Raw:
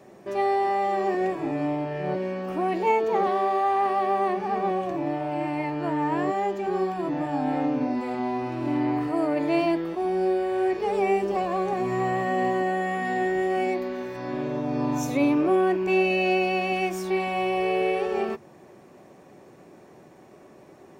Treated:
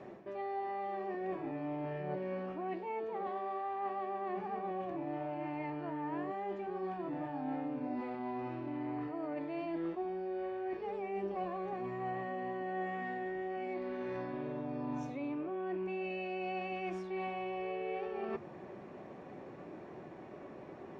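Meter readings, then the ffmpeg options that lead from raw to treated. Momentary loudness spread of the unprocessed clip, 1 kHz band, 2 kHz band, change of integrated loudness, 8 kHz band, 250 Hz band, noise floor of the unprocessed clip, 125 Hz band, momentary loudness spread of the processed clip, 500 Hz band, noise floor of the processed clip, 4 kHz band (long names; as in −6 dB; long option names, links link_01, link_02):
6 LU, −14.0 dB, −15.0 dB, −14.0 dB, can't be measured, −13.5 dB, −51 dBFS, −12.5 dB, 11 LU, −14.0 dB, −50 dBFS, −18.0 dB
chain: -af "lowpass=2900,areverse,acompressor=threshold=-37dB:ratio=12,areverse,flanger=delay=2.7:depth=9.6:regen=89:speed=0.1:shape=triangular,volume=5.5dB"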